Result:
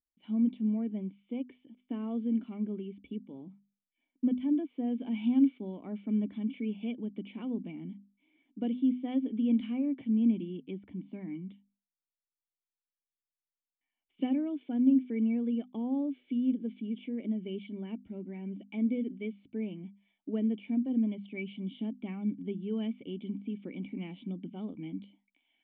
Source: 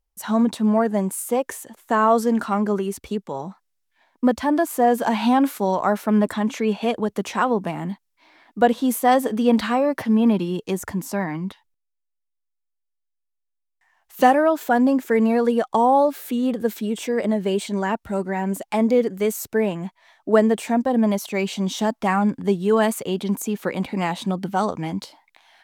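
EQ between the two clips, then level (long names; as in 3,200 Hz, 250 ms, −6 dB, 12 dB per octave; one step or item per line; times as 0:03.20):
formant resonators in series i
low-shelf EQ 86 Hz −9.5 dB
mains-hum notches 50/100/150/200/250 Hz
−3.0 dB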